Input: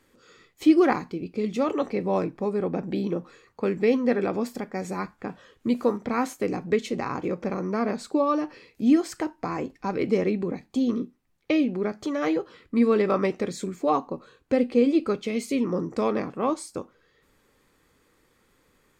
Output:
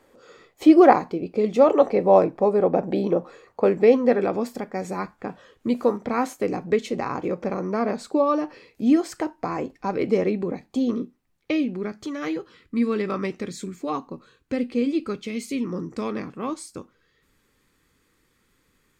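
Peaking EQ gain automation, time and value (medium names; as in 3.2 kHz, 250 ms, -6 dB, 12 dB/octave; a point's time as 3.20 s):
peaking EQ 650 Hz 1.4 oct
3.68 s +13 dB
4.36 s +4 dB
10.92 s +4 dB
12.06 s -8 dB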